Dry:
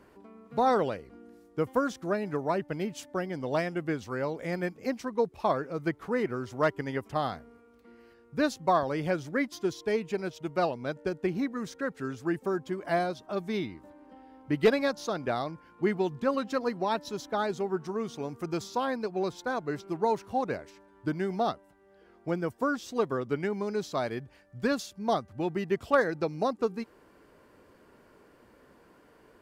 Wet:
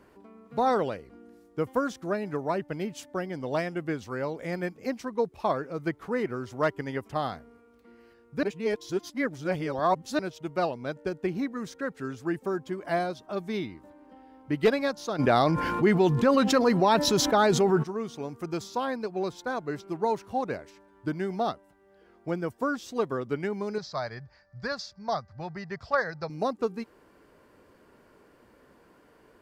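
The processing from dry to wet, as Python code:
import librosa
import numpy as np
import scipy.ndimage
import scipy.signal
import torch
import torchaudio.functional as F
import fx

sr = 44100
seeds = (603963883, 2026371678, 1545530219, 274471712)

y = fx.env_flatten(x, sr, amount_pct=70, at=(15.18, 17.82), fade=0.02)
y = fx.curve_eq(y, sr, hz=(150.0, 310.0, 600.0, 1900.0, 3000.0, 4800.0, 10000.0), db=(0, -16, -2, 1, -12, 7, -24), at=(23.78, 26.3))
y = fx.edit(y, sr, fx.reverse_span(start_s=8.43, length_s=1.76), tone=tone)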